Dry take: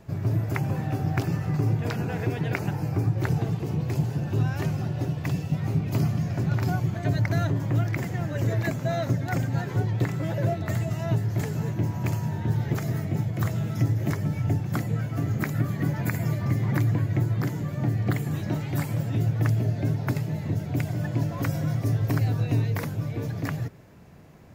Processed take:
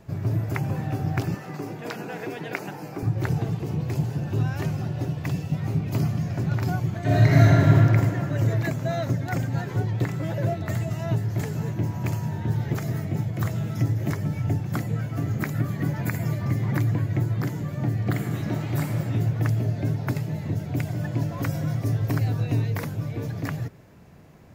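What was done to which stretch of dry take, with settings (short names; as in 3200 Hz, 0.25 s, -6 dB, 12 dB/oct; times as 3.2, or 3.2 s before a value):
1.34–3.03 Bessel high-pass 270 Hz, order 4
7.02–7.74 reverb throw, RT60 2.7 s, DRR -8 dB
18.06–18.93 reverb throw, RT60 2.9 s, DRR 4 dB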